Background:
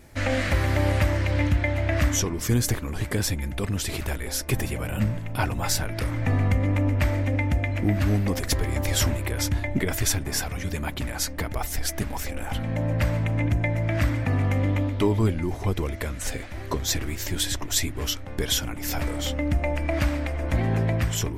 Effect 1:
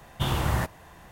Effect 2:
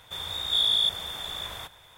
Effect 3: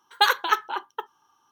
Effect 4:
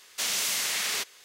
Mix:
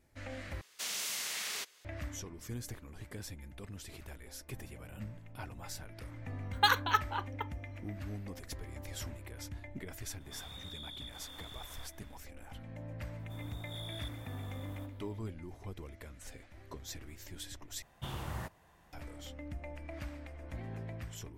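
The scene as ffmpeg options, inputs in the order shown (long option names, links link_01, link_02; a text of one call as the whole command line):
ffmpeg -i bed.wav -i cue0.wav -i cue1.wav -i cue2.wav -i cue3.wav -filter_complex "[2:a]asplit=2[link_01][link_02];[0:a]volume=-19.5dB[link_03];[3:a]highpass=430[link_04];[link_01]acompressor=threshold=-33dB:ratio=6:attack=3.2:release=140:knee=1:detection=peak[link_05];[link_02]equalizer=frequency=3600:width_type=o:width=2.9:gain=-15[link_06];[link_03]asplit=3[link_07][link_08][link_09];[link_07]atrim=end=0.614[link_10];[4:a]atrim=end=1.24,asetpts=PTS-STARTPTS,volume=-9.5dB[link_11];[link_08]atrim=start=1.846:end=17.824[link_12];[1:a]atrim=end=1.11,asetpts=PTS-STARTPTS,volume=-14.5dB[link_13];[link_09]atrim=start=18.926[link_14];[link_04]atrim=end=1.51,asetpts=PTS-STARTPTS,volume=-7dB,afade=type=in:duration=0.004:curve=hsin,afade=type=out:start_time=1.506:duration=0.004:curve=hsin,adelay=283122S[link_15];[link_05]atrim=end=1.97,asetpts=PTS-STARTPTS,volume=-13dB,afade=type=in:duration=0.004:curve=hsin,afade=type=out:start_time=1.966:duration=0.004:curve=hsin,adelay=10200[link_16];[link_06]atrim=end=1.97,asetpts=PTS-STARTPTS,volume=-9.5dB,afade=type=in:duration=0.004:curve=hsin,afade=type=out:start_time=1.966:duration=0.004:curve=hsin,adelay=13190[link_17];[link_10][link_11]acrossfade=duration=0.004:curve1=hsin:curve2=hsin[link_18];[link_18][link_12]acrossfade=duration=0.004:curve1=hsin:curve2=hsin[link_19];[link_19][link_13]acrossfade=duration=0.004:curve1=hsin:curve2=hsin[link_20];[link_20][link_14]acrossfade=duration=0.004:curve1=hsin:curve2=hsin[link_21];[link_21][link_15][link_16][link_17]amix=inputs=4:normalize=0" out.wav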